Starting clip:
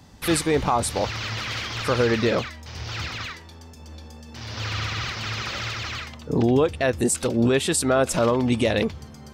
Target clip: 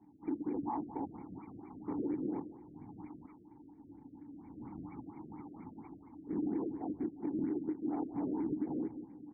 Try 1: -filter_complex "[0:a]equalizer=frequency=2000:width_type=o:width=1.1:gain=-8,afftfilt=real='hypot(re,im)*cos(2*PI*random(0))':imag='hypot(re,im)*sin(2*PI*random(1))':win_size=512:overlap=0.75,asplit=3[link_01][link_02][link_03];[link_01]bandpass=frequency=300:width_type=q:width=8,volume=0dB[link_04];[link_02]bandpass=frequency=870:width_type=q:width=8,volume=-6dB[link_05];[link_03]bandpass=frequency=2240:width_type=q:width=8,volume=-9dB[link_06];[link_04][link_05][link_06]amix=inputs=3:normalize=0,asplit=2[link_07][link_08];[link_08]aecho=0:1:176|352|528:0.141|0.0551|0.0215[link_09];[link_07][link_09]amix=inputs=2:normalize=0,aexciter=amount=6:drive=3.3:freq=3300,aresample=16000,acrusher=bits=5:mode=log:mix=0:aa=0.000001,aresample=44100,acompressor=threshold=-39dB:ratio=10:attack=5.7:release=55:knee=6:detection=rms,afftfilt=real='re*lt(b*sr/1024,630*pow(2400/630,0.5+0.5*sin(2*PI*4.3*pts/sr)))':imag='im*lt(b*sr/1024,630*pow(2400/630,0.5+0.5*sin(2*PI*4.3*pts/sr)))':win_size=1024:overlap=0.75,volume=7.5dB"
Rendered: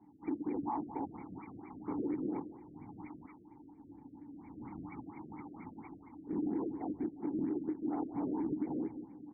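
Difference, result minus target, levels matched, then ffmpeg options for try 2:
2,000 Hz band +4.5 dB
-filter_complex "[0:a]equalizer=frequency=2000:width_type=o:width=1.1:gain=-18.5,afftfilt=real='hypot(re,im)*cos(2*PI*random(0))':imag='hypot(re,im)*sin(2*PI*random(1))':win_size=512:overlap=0.75,asplit=3[link_01][link_02][link_03];[link_01]bandpass=frequency=300:width_type=q:width=8,volume=0dB[link_04];[link_02]bandpass=frequency=870:width_type=q:width=8,volume=-6dB[link_05];[link_03]bandpass=frequency=2240:width_type=q:width=8,volume=-9dB[link_06];[link_04][link_05][link_06]amix=inputs=3:normalize=0,asplit=2[link_07][link_08];[link_08]aecho=0:1:176|352|528:0.141|0.0551|0.0215[link_09];[link_07][link_09]amix=inputs=2:normalize=0,aexciter=amount=6:drive=3.3:freq=3300,aresample=16000,acrusher=bits=5:mode=log:mix=0:aa=0.000001,aresample=44100,acompressor=threshold=-39dB:ratio=10:attack=5.7:release=55:knee=6:detection=rms,afftfilt=real='re*lt(b*sr/1024,630*pow(2400/630,0.5+0.5*sin(2*PI*4.3*pts/sr)))':imag='im*lt(b*sr/1024,630*pow(2400/630,0.5+0.5*sin(2*PI*4.3*pts/sr)))':win_size=1024:overlap=0.75,volume=7.5dB"

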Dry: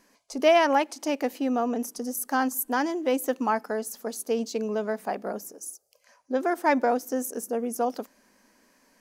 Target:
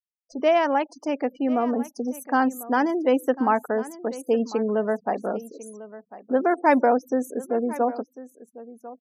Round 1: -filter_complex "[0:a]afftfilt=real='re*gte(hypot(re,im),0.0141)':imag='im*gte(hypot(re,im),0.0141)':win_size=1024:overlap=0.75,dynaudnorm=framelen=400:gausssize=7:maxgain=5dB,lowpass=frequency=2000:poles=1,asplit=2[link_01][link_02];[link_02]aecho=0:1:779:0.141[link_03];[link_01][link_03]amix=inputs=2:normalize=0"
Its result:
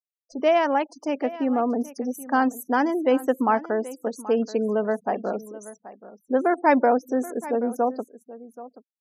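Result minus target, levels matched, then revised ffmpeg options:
echo 268 ms early
-filter_complex "[0:a]afftfilt=real='re*gte(hypot(re,im),0.0141)':imag='im*gte(hypot(re,im),0.0141)':win_size=1024:overlap=0.75,dynaudnorm=framelen=400:gausssize=7:maxgain=5dB,lowpass=frequency=2000:poles=1,asplit=2[link_01][link_02];[link_02]aecho=0:1:1047:0.141[link_03];[link_01][link_03]amix=inputs=2:normalize=0"

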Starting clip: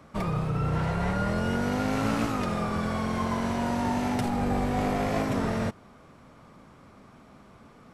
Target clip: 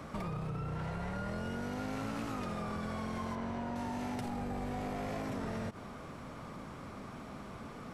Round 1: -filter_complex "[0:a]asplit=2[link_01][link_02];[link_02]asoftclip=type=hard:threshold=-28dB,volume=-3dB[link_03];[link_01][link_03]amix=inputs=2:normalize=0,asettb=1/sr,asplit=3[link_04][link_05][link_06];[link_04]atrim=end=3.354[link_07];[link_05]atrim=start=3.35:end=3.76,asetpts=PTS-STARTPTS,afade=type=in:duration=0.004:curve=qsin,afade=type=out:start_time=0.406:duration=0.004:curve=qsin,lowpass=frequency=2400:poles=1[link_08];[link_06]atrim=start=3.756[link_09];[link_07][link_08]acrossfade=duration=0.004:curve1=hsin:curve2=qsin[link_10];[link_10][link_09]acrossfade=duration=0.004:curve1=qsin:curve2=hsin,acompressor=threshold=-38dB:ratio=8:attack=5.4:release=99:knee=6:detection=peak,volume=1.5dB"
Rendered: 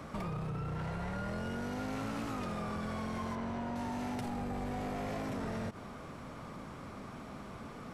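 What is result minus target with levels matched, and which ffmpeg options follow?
hard clipping: distortion +19 dB
-filter_complex "[0:a]asplit=2[link_01][link_02];[link_02]asoftclip=type=hard:threshold=-19.5dB,volume=-3dB[link_03];[link_01][link_03]amix=inputs=2:normalize=0,asettb=1/sr,asplit=3[link_04][link_05][link_06];[link_04]atrim=end=3.354[link_07];[link_05]atrim=start=3.35:end=3.76,asetpts=PTS-STARTPTS,afade=type=in:duration=0.004:curve=qsin,afade=type=out:start_time=0.406:duration=0.004:curve=qsin,lowpass=frequency=2400:poles=1[link_08];[link_06]atrim=start=3.756[link_09];[link_07][link_08]acrossfade=duration=0.004:curve1=hsin:curve2=qsin[link_10];[link_10][link_09]acrossfade=duration=0.004:curve1=qsin:curve2=hsin,acompressor=threshold=-38dB:ratio=8:attack=5.4:release=99:knee=6:detection=peak,volume=1.5dB"

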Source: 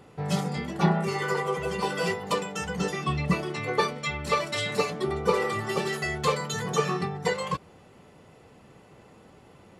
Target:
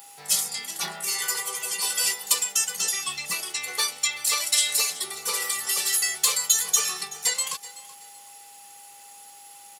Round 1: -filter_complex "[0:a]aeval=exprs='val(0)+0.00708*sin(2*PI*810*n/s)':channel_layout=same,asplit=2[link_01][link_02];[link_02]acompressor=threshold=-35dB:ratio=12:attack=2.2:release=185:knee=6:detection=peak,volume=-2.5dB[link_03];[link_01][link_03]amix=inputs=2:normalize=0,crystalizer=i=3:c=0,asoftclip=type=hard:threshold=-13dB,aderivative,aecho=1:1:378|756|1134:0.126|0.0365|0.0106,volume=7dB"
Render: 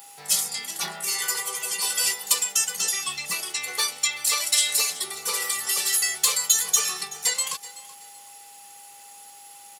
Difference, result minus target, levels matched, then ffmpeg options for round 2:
downward compressor: peak gain reduction −6 dB
-filter_complex "[0:a]aeval=exprs='val(0)+0.00708*sin(2*PI*810*n/s)':channel_layout=same,asplit=2[link_01][link_02];[link_02]acompressor=threshold=-41.5dB:ratio=12:attack=2.2:release=185:knee=6:detection=peak,volume=-2.5dB[link_03];[link_01][link_03]amix=inputs=2:normalize=0,crystalizer=i=3:c=0,asoftclip=type=hard:threshold=-13dB,aderivative,aecho=1:1:378|756|1134:0.126|0.0365|0.0106,volume=7dB"

